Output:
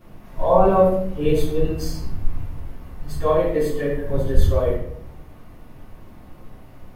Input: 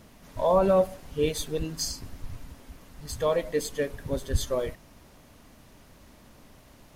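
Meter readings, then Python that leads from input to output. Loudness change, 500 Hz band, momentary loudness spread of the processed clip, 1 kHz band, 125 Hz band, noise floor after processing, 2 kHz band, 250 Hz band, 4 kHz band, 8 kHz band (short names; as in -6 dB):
+6.5 dB, +6.5 dB, 19 LU, +8.5 dB, +10.5 dB, -44 dBFS, +3.5 dB, +8.0 dB, -3.0 dB, -6.5 dB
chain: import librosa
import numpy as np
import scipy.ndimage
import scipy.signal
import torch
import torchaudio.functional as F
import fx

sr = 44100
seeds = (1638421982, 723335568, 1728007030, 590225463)

y = fx.peak_eq(x, sr, hz=6500.0, db=-13.5, octaves=2.2)
y = fx.room_shoebox(y, sr, seeds[0], volume_m3=140.0, walls='mixed', distance_m=3.2)
y = y * 10.0 ** (-3.5 / 20.0)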